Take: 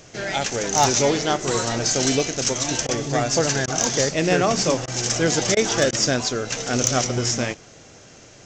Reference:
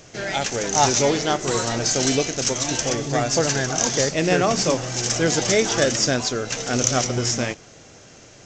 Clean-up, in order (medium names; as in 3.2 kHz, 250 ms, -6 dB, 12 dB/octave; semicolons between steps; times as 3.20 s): clip repair -8 dBFS; interpolate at 2.87/3.66/4.86/5.55/5.91 s, 16 ms